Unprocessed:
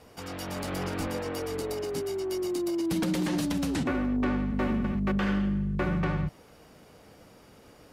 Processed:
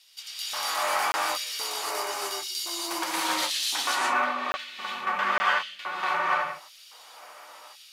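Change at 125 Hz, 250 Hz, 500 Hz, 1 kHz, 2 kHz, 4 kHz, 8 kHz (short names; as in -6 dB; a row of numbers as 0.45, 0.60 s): under -25 dB, -16.5 dB, -4.5 dB, +12.0 dB, +10.0 dB, +12.5 dB, +11.0 dB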